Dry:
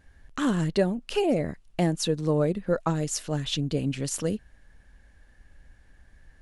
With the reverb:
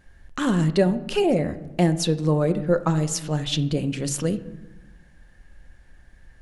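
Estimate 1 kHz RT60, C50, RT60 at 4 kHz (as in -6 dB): 1.0 s, 14.5 dB, 0.60 s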